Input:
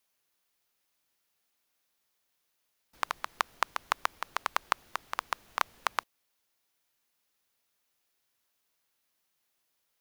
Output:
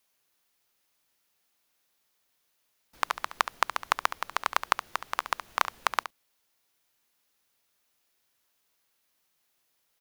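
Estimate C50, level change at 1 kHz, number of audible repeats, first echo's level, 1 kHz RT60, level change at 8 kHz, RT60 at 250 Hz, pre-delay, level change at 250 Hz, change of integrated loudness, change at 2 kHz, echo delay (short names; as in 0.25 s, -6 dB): none, +4.0 dB, 1, -11.5 dB, none, +4.0 dB, none, none, +4.0 dB, +4.0 dB, +4.0 dB, 70 ms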